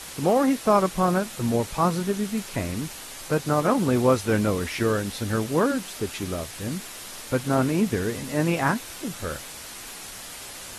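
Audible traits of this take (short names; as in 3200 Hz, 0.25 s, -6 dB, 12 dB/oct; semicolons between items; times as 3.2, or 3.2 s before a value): a quantiser's noise floor 6-bit, dither triangular; AAC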